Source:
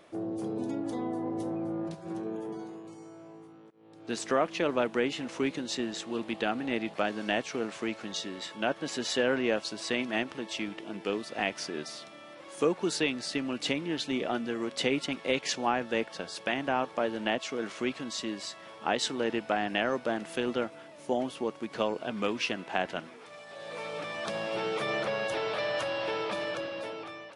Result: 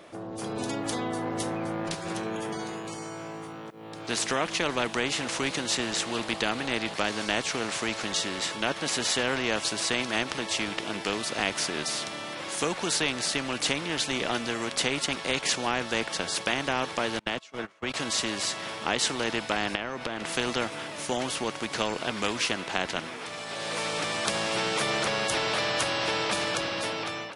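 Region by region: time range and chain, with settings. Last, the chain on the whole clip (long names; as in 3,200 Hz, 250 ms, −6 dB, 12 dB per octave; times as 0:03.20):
0:17.19–0:17.94: noise gate −33 dBFS, range −29 dB + downward compressor 4 to 1, threshold −32 dBFS + multiband upward and downward expander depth 100%
0:19.75–0:20.36: high-shelf EQ 5,100 Hz −9.5 dB + downward compressor, threshold −35 dBFS
whole clip: automatic gain control gain up to 13 dB; every bin compressed towards the loudest bin 2 to 1; level −5.5 dB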